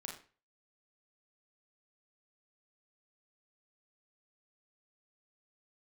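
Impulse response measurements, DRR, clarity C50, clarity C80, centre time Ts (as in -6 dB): -1.0 dB, 5.5 dB, 10.5 dB, 30 ms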